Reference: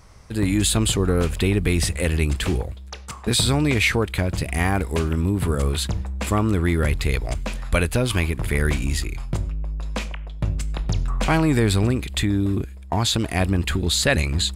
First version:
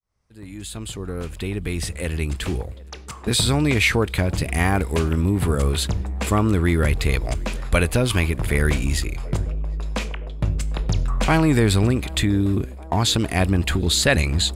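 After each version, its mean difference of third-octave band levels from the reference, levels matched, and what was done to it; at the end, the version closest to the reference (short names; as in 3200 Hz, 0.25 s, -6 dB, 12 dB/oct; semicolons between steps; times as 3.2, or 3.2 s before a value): 3.0 dB: opening faded in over 4.05 s; narrowing echo 0.752 s, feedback 83%, band-pass 500 Hz, level -20 dB; gain +1.5 dB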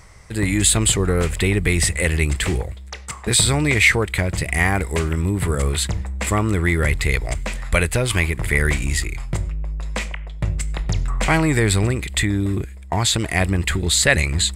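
1.5 dB: reverse; upward compressor, threshold -36 dBFS; reverse; thirty-one-band EQ 250 Hz -7 dB, 2000 Hz +9 dB, 8000 Hz +8 dB; gain +1.5 dB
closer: second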